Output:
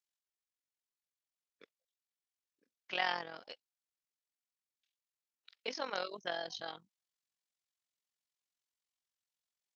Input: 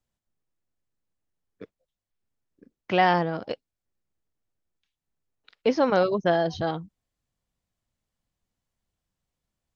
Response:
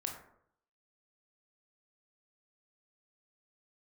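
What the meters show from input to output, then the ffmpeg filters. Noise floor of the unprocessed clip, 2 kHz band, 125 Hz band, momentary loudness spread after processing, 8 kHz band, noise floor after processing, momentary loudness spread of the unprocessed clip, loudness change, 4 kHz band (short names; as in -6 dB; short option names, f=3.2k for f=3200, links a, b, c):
under -85 dBFS, -9.5 dB, -29.5 dB, 18 LU, n/a, under -85 dBFS, 14 LU, -15.0 dB, -5.0 dB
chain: -af "tremolo=f=44:d=0.75,bandpass=f=5.1k:t=q:w=0.65:csg=0"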